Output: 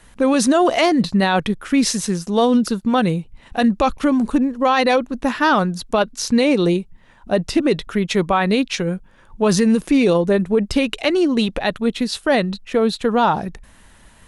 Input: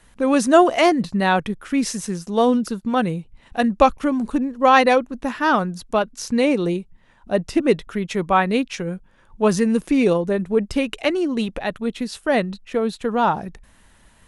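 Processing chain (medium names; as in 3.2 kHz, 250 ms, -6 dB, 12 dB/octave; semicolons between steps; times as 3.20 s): dynamic bell 4 kHz, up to +6 dB, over -44 dBFS, Q 2; peak limiter -12.5 dBFS, peak gain reduction 11.5 dB; trim +5 dB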